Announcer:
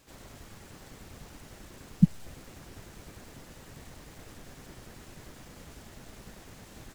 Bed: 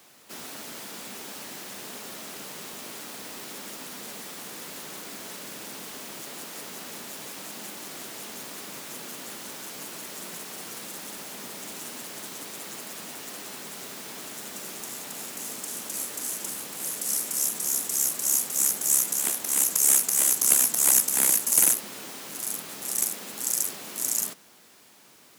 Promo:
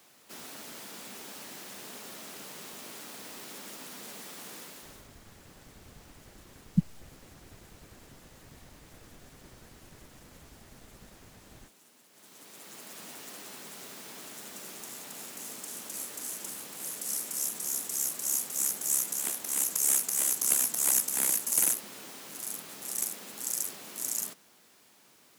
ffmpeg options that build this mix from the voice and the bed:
ffmpeg -i stem1.wav -i stem2.wav -filter_complex "[0:a]adelay=4750,volume=-5dB[link_01];[1:a]volume=11.5dB,afade=type=out:start_time=4.55:duration=0.54:silence=0.133352,afade=type=in:start_time=12.1:duration=0.96:silence=0.149624[link_02];[link_01][link_02]amix=inputs=2:normalize=0" out.wav

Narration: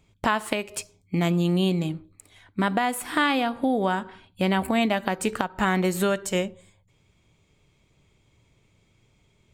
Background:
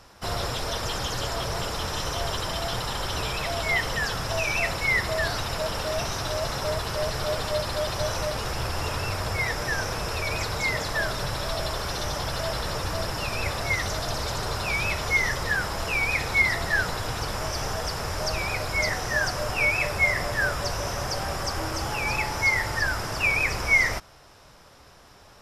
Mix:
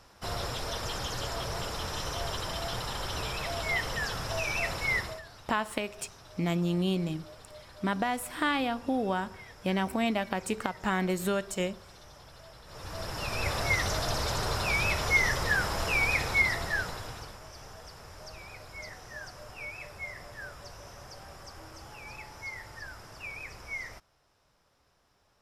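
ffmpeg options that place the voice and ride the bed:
ffmpeg -i stem1.wav -i stem2.wav -filter_complex "[0:a]adelay=5250,volume=-6dB[link_01];[1:a]volume=15.5dB,afade=type=out:start_time=4.95:duration=0.27:silence=0.141254,afade=type=in:start_time=12.66:duration=0.93:silence=0.0891251,afade=type=out:start_time=16.03:duration=1.36:silence=0.149624[link_02];[link_01][link_02]amix=inputs=2:normalize=0" out.wav

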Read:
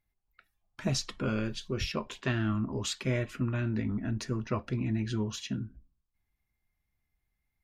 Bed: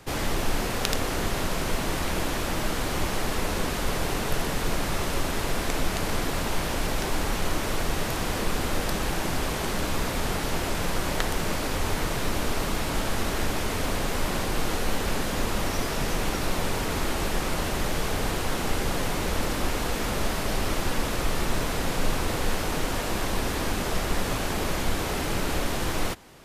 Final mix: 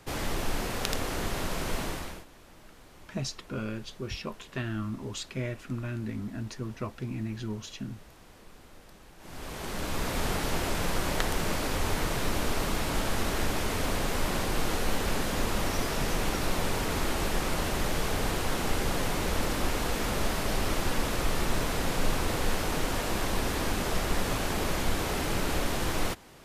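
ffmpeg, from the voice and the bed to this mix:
ffmpeg -i stem1.wav -i stem2.wav -filter_complex "[0:a]adelay=2300,volume=-3.5dB[link_01];[1:a]volume=19dB,afade=type=out:start_time=1.81:duration=0.44:silence=0.0891251,afade=type=in:start_time=9.18:duration=1.04:silence=0.0668344[link_02];[link_01][link_02]amix=inputs=2:normalize=0" out.wav

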